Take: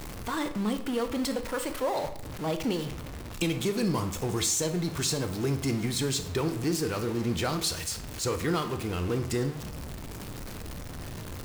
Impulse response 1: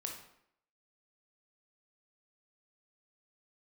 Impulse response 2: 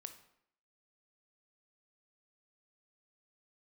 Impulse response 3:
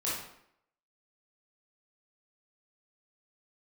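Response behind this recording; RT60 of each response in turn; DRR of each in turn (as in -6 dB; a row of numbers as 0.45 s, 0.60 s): 2; 0.70 s, 0.70 s, 0.70 s; 1.0 dB, 8.0 dB, -8.0 dB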